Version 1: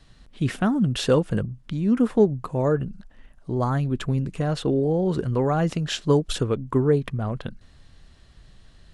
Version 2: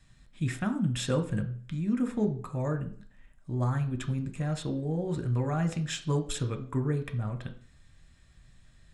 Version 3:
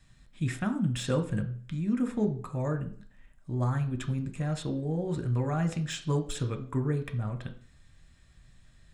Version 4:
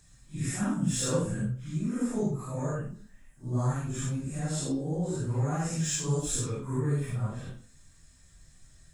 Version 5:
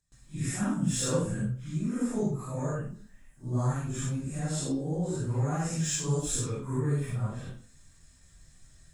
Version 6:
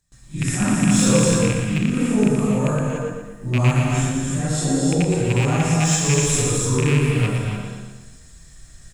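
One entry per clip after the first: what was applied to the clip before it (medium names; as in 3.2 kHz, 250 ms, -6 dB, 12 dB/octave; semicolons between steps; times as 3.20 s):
reverberation RT60 0.45 s, pre-delay 3 ms, DRR 6 dB; trim -7 dB
de-esser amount 75%
phase randomisation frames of 200 ms; resonant high shelf 4.6 kHz +9.5 dB, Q 1.5
gate with hold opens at -48 dBFS
rattle on loud lows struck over -26 dBFS, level -23 dBFS; on a send: feedback delay 117 ms, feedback 49%, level -6 dB; on the sum: gated-style reverb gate 320 ms rising, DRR 2.5 dB; trim +8.5 dB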